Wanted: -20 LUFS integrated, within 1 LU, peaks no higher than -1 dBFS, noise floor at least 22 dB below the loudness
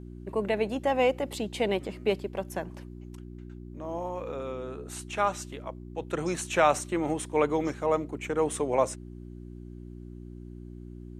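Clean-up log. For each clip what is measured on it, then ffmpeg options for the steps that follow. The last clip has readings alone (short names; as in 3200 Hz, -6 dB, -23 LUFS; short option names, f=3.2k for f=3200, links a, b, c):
hum 60 Hz; harmonics up to 360 Hz; hum level -40 dBFS; loudness -29.5 LUFS; peak -8.0 dBFS; loudness target -20.0 LUFS
-> -af "bandreject=f=60:t=h:w=4,bandreject=f=120:t=h:w=4,bandreject=f=180:t=h:w=4,bandreject=f=240:t=h:w=4,bandreject=f=300:t=h:w=4,bandreject=f=360:t=h:w=4"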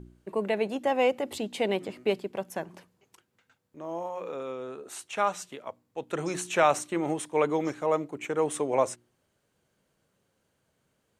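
hum none; loudness -29.5 LUFS; peak -8.0 dBFS; loudness target -20.0 LUFS
-> -af "volume=9.5dB,alimiter=limit=-1dB:level=0:latency=1"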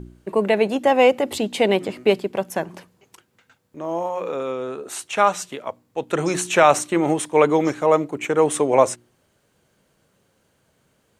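loudness -20.5 LUFS; peak -1.0 dBFS; noise floor -66 dBFS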